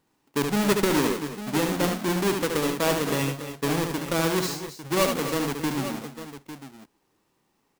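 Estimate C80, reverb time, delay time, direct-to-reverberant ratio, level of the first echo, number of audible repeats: no reverb audible, no reverb audible, 73 ms, no reverb audible, −5.5 dB, 3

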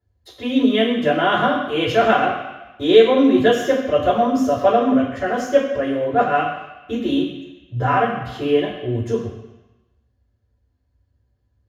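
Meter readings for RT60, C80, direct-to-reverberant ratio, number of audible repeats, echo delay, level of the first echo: 1.0 s, 7.0 dB, −7.5 dB, no echo audible, no echo audible, no echo audible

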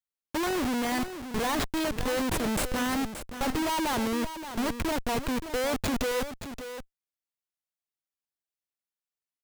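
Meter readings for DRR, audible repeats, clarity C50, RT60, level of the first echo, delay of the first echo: no reverb audible, 1, no reverb audible, no reverb audible, −10.5 dB, 575 ms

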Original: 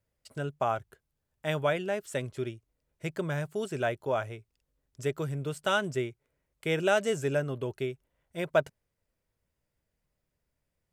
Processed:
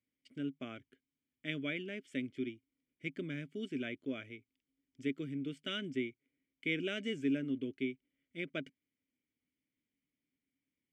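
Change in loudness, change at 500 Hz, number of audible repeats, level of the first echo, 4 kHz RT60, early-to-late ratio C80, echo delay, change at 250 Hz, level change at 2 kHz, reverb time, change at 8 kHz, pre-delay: −8.0 dB, −13.5 dB, no echo audible, no echo audible, no reverb audible, no reverb audible, no echo audible, −0.5 dB, −7.5 dB, no reverb audible, below −15 dB, no reverb audible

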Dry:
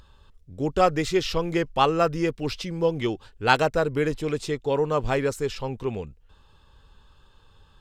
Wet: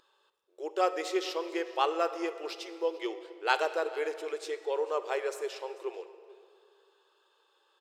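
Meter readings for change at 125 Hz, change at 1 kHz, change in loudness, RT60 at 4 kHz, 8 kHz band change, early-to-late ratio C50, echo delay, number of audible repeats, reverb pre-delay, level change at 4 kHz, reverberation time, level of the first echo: below −40 dB, −7.0 dB, −8.0 dB, 1.3 s, −7.5 dB, 11.5 dB, 441 ms, 1, 27 ms, −7.0 dB, 2.2 s, −21.5 dB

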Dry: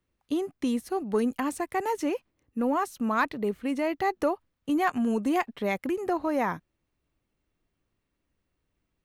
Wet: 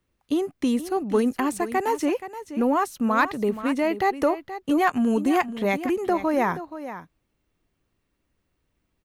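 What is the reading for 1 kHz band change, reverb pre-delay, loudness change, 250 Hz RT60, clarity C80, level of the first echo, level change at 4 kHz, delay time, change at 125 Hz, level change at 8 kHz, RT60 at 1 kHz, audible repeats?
+4.5 dB, no reverb audible, +4.5 dB, no reverb audible, no reverb audible, −12.5 dB, +4.5 dB, 476 ms, +5.0 dB, +4.5 dB, no reverb audible, 1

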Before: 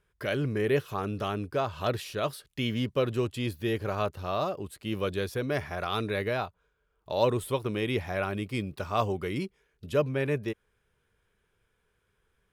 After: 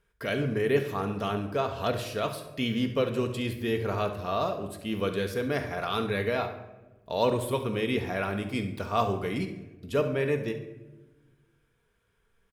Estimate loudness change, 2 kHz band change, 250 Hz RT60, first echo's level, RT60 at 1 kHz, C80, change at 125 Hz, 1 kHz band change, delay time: +1.0 dB, +1.5 dB, 1.7 s, −13.0 dB, 0.90 s, 12.0 dB, −0.5 dB, +1.5 dB, 69 ms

